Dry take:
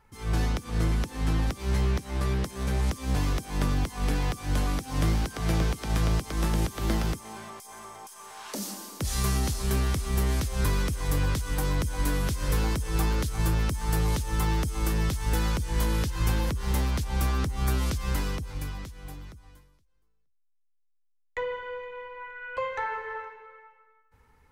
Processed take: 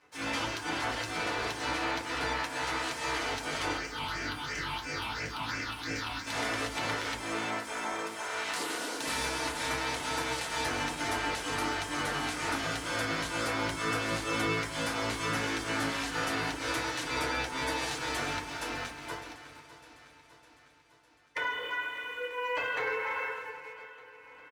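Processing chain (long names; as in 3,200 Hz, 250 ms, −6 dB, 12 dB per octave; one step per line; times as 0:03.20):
meter weighting curve A
gate on every frequency bin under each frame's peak −10 dB weak
low-pass filter 11,000 Hz 24 dB per octave
bass and treble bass −4 dB, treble −9 dB
downward compressor 5 to 1, threshold −45 dBFS, peak gain reduction 10 dB
leveller curve on the samples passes 2
0:03.77–0:06.27: all-pass phaser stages 6, 2.9 Hz, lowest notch 450–1,000 Hz
repeating echo 605 ms, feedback 57%, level −16 dB
feedback delay network reverb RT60 0.41 s, low-frequency decay 1.45×, high-frequency decay 0.4×, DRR −4 dB
level +3.5 dB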